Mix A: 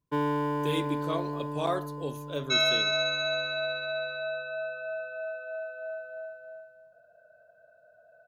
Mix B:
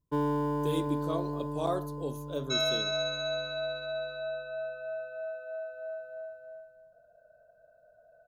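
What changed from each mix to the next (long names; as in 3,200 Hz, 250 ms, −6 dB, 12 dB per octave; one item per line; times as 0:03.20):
first sound: remove high-pass filter 89 Hz 12 dB per octave
master: add parametric band 2,200 Hz −12.5 dB 1.3 octaves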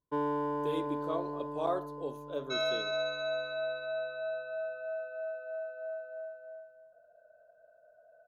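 master: add bass and treble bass −13 dB, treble −14 dB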